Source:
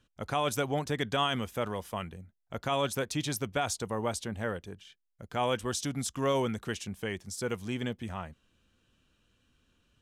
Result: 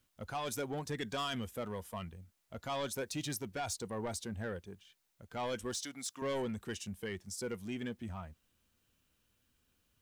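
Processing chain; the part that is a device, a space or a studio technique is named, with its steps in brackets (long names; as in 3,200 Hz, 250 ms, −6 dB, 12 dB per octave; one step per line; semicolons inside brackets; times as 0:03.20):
0:05.74–0:06.22: meter weighting curve A
open-reel tape (soft clipping −29 dBFS, distortion −11 dB; parametric band 84 Hz +2 dB; white noise bed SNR 34 dB)
noise reduction from a noise print of the clip's start 6 dB
level −2.5 dB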